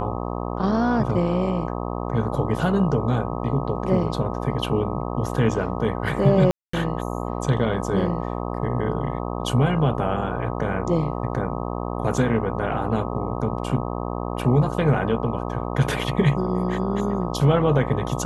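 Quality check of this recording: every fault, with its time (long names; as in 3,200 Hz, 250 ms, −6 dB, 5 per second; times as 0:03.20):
mains buzz 60 Hz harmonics 21 −28 dBFS
0:06.51–0:06.73: drop-out 224 ms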